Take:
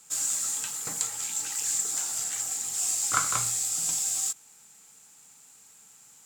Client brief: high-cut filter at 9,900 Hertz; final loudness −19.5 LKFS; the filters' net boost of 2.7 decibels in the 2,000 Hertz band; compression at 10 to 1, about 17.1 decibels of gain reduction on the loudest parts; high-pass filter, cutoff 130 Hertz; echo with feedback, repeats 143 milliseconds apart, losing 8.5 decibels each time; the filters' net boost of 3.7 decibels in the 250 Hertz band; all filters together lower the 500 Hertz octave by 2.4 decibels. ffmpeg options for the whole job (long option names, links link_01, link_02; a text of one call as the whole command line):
ffmpeg -i in.wav -af "highpass=130,lowpass=9900,equalizer=frequency=250:width_type=o:gain=7,equalizer=frequency=500:width_type=o:gain=-5,equalizer=frequency=2000:width_type=o:gain=4,acompressor=threshold=-37dB:ratio=10,aecho=1:1:143|286|429|572:0.376|0.143|0.0543|0.0206,volume=17.5dB" out.wav